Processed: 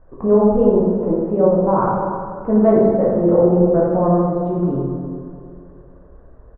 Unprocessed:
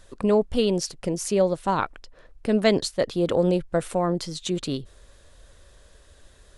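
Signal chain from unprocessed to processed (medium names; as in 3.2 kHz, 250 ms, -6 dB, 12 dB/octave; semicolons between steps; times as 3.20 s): low-pass 1.1 kHz 24 dB/octave; feedback delay 340 ms, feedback 48%, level -18 dB; plate-style reverb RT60 2 s, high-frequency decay 0.5×, DRR -6 dB; trim +1.5 dB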